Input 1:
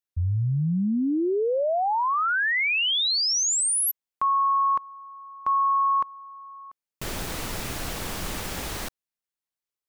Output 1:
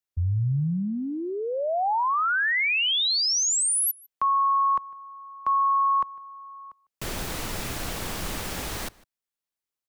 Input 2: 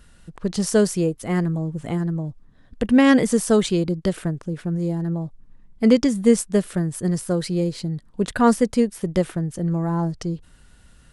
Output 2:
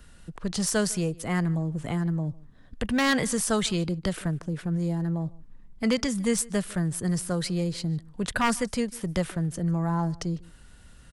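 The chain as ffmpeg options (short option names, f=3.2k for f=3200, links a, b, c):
-filter_complex "[0:a]acrossover=split=170|660|3400[a][b][c][d];[b]acompressor=threshold=-31dB:ratio=10:attack=0.12:release=149:knee=1:detection=peak[e];[a][e][c][d]amix=inputs=4:normalize=0,aeval=exprs='0.188*(abs(mod(val(0)/0.188+3,4)-2)-1)':c=same,asplit=2[f][g];[g]adelay=151.6,volume=-23dB,highshelf=f=4k:g=-3.41[h];[f][h]amix=inputs=2:normalize=0"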